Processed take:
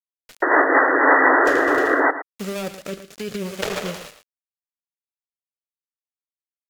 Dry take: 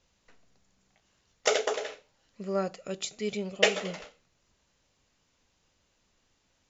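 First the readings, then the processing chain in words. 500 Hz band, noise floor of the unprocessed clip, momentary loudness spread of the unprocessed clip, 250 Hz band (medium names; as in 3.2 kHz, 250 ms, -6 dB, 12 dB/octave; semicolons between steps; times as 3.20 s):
+10.0 dB, -73 dBFS, 14 LU, +14.0 dB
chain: dead-time distortion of 0.24 ms; peaking EQ 1.2 kHz +3 dB 0.22 oct; in parallel at +2 dB: compressor with a negative ratio -34 dBFS, ratio -0.5; on the sum: bit crusher 7-bit; vibrato 0.47 Hz 39 cents; painted sound noise, 0.42–2.11 s, 260–2000 Hz -13 dBFS; rotary cabinet horn 7 Hz, later 0.75 Hz, at 0.29 s; on a send: delay 112 ms -13 dB; on the sum: tape noise reduction on one side only encoder only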